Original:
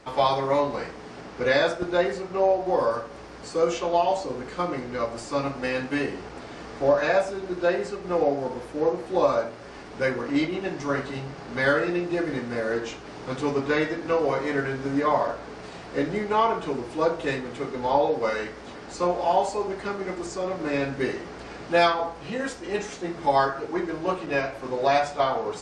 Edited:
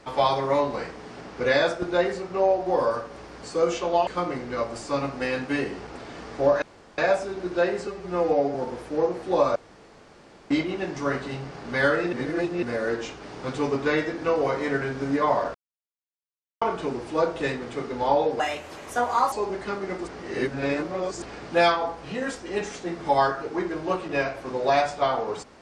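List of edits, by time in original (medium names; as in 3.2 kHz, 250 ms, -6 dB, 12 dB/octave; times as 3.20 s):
4.07–4.49 s: delete
7.04 s: insert room tone 0.36 s
7.93–8.38 s: stretch 1.5×
9.39–10.34 s: room tone
11.96–12.46 s: reverse
15.38–16.45 s: mute
18.23–19.50 s: speed 137%
20.25–21.40 s: reverse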